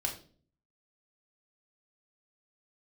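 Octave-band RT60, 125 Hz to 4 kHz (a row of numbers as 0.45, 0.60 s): 0.80, 0.70, 0.50, 0.35, 0.35, 0.35 s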